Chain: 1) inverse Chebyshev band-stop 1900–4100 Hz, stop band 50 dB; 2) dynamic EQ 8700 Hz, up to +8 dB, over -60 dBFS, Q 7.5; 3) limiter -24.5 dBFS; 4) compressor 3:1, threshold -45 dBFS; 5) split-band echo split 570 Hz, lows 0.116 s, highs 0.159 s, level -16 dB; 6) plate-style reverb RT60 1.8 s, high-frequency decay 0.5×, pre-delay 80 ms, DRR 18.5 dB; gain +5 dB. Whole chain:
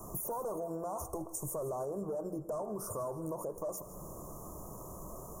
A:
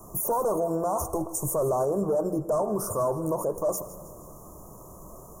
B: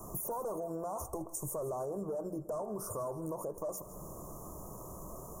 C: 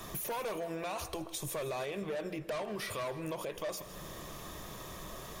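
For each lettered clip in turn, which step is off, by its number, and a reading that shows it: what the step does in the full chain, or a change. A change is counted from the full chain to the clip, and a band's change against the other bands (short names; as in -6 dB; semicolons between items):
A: 4, mean gain reduction 7.5 dB; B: 6, echo-to-direct -13.0 dB to -14.5 dB; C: 1, momentary loudness spread change -1 LU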